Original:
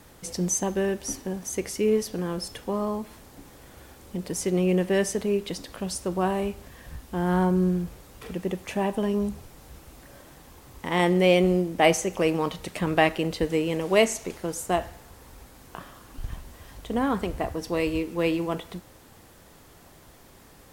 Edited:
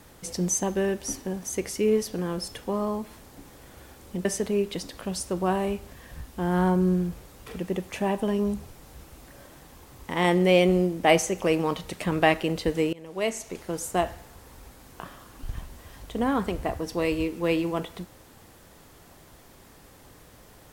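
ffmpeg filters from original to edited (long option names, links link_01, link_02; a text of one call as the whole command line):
ffmpeg -i in.wav -filter_complex "[0:a]asplit=3[link_01][link_02][link_03];[link_01]atrim=end=4.252[link_04];[link_02]atrim=start=4.998:end=13.68,asetpts=PTS-STARTPTS,afade=type=out:start_time=8.678:duration=0.004:curve=hsin:silence=0.0707946[link_05];[link_03]atrim=start=13.68,asetpts=PTS-STARTPTS,afade=type=in:duration=0.87:silence=0.0707946[link_06];[link_05][link_06]concat=n=2:v=0:a=1[link_07];[link_04][link_07]acrossfade=duration=0.004:curve1=hsin:curve2=hsin" out.wav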